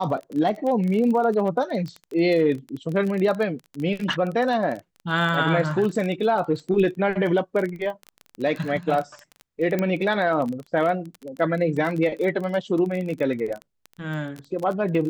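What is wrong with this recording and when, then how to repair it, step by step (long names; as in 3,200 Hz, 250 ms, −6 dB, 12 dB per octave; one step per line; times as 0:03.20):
surface crackle 21 per second −27 dBFS
0:09.79: click −12 dBFS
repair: click removal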